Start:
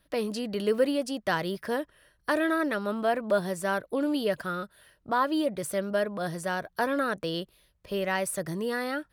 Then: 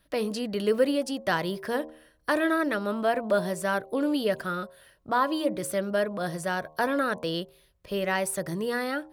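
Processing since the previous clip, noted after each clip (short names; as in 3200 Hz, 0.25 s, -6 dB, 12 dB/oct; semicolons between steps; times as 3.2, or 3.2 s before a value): de-hum 77.76 Hz, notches 14; gain +1.5 dB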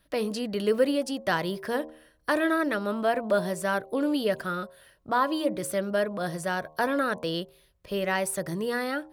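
nothing audible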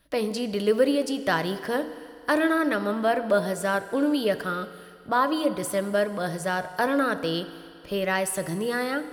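FDN reverb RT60 2.6 s, low-frequency decay 0.7×, high-frequency decay 0.95×, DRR 11.5 dB; gain +2 dB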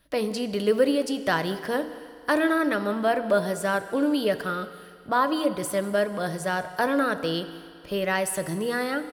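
echo 0.193 s -21.5 dB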